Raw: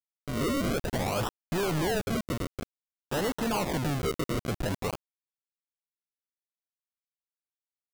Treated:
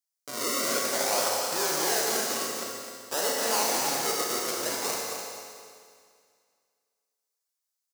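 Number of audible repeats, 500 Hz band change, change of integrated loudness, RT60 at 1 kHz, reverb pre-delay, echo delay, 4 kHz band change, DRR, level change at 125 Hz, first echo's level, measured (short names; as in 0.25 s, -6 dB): 1, +1.0 dB, +4.0 dB, 2.1 s, 30 ms, 0.256 s, +8.5 dB, -3.5 dB, -18.5 dB, -7.0 dB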